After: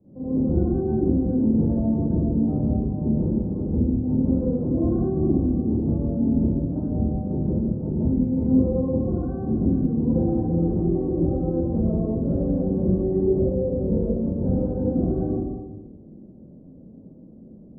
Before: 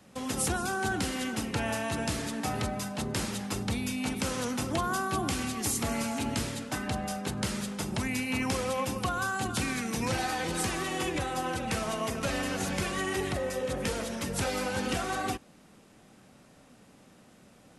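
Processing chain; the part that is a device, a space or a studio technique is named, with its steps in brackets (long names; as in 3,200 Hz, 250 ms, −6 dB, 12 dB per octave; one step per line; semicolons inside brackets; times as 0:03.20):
next room (low-pass filter 460 Hz 24 dB per octave; convolution reverb RT60 1.1 s, pre-delay 31 ms, DRR −10.5 dB)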